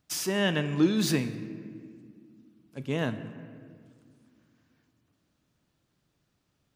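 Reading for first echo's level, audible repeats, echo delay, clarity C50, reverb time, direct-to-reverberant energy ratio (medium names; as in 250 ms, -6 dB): no echo, no echo, no echo, 12.0 dB, 2.1 s, 10.0 dB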